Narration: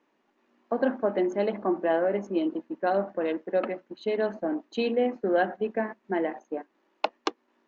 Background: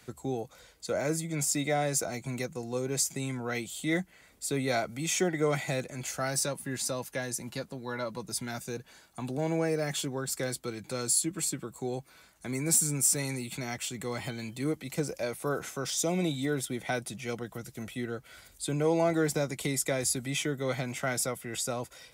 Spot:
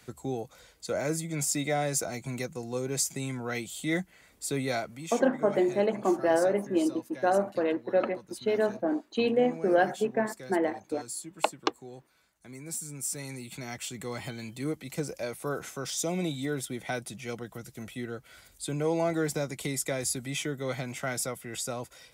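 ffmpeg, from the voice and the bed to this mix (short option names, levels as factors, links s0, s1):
-filter_complex "[0:a]adelay=4400,volume=1.06[s0];[1:a]volume=3.16,afade=t=out:st=4.61:d=0.55:silence=0.266073,afade=t=in:st=12.84:d=1.08:silence=0.316228[s1];[s0][s1]amix=inputs=2:normalize=0"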